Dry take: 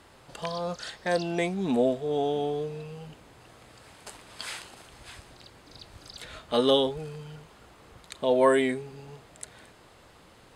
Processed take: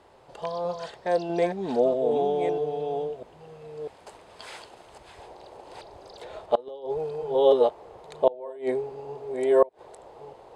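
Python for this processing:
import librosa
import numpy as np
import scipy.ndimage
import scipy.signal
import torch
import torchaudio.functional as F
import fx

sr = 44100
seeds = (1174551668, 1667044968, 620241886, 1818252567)

y = fx.reverse_delay(x, sr, ms=646, wet_db=-5.0)
y = fx.band_shelf(y, sr, hz=600.0, db=fx.steps((0.0, 8.5), (5.17, 15.5)), octaves=1.7)
y = fx.gate_flip(y, sr, shuts_db=-2.0, range_db=-27)
y = fx.high_shelf(y, sr, hz=8500.0, db=-10.0)
y = y * 10.0 ** (-5.5 / 20.0)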